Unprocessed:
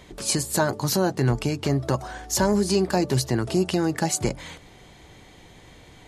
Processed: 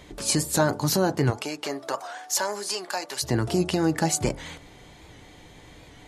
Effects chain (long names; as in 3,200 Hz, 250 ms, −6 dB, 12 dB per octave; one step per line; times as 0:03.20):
0:01.30–0:03.22: high-pass filter 470 Hz → 1,000 Hz 12 dB per octave
feedback delay network reverb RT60 0.31 s, low-frequency decay 0.85×, high-frequency decay 0.25×, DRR 12.5 dB
wow of a warped record 78 rpm, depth 100 cents